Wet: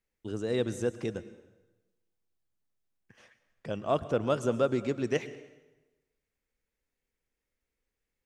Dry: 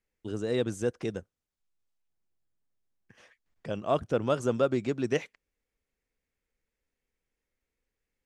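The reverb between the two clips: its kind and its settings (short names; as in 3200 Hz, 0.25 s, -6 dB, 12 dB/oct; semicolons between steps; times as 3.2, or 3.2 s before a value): plate-style reverb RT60 1.1 s, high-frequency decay 0.85×, pre-delay 95 ms, DRR 14.5 dB; gain -1 dB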